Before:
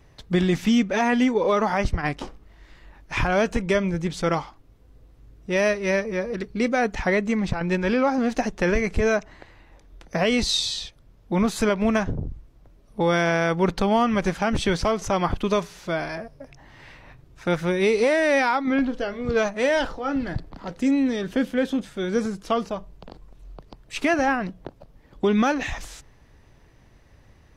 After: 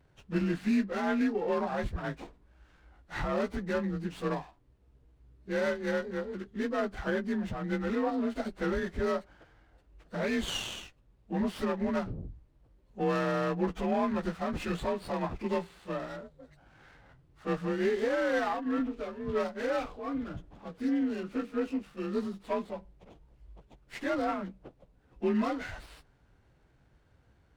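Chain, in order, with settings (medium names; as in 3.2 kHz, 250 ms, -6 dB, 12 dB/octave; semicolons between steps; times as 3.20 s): frequency axis rescaled in octaves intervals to 90%; sliding maximum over 5 samples; trim -7.5 dB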